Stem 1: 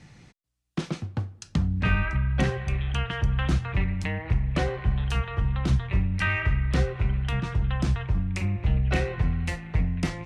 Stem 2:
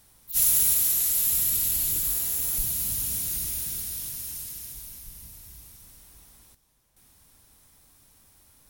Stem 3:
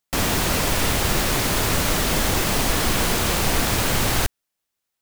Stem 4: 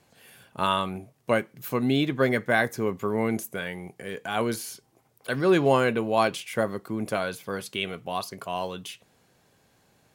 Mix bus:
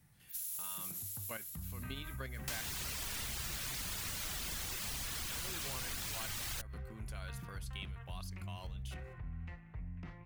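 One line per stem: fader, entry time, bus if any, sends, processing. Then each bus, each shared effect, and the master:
−1.0 dB, 0.00 s, bus A, no send, low-pass filter 1,300 Hz 12 dB per octave
+2.5 dB, 0.00 s, bus A, no send, expander for the loud parts 1.5 to 1, over −43 dBFS; automatic ducking −21 dB, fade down 1.90 s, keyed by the fourth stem
0.0 dB, 2.35 s, no bus, no send, reverb reduction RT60 0.71 s; upward compression, threshold −38 dBFS
−0.5 dB, 0.00 s, no bus, no send, noise gate with hold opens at −51 dBFS; output level in coarse steps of 11 dB
bus A: 0.0 dB, brickwall limiter −22 dBFS, peak gain reduction 10 dB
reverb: not used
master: guitar amp tone stack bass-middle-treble 5-5-5; downward compressor 4 to 1, threshold −39 dBFS, peak gain reduction 10 dB

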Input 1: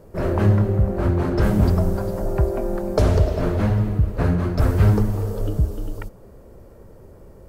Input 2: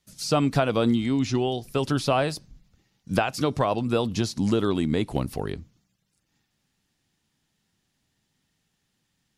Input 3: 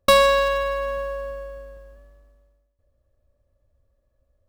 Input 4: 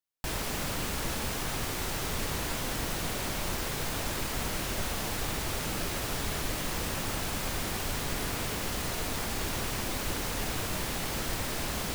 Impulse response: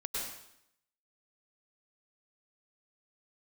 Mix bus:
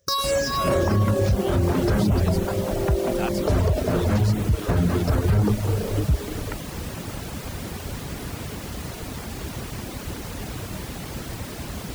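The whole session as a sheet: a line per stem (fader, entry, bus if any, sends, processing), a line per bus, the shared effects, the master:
+2.5 dB, 0.50 s, no send, no processing
−6.0 dB, 0.00 s, no send, compressor whose output falls as the input rises −25 dBFS
−1.5 dB, 0.00 s, send −9 dB, rippled gain that drifts along the octave scale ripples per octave 0.54, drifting −2.4 Hz, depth 17 dB; high shelf with overshoot 4,100 Hz +10 dB, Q 3; downward compressor 8 to 1, threshold −19 dBFS, peak gain reduction 14 dB
−2.5 dB, 0.00 s, no send, low-shelf EQ 390 Hz +10 dB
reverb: on, RT60 0.75 s, pre-delay 92 ms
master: high-pass filter 53 Hz 12 dB per octave; reverb reduction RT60 0.53 s; brickwall limiter −12 dBFS, peak gain reduction 9.5 dB

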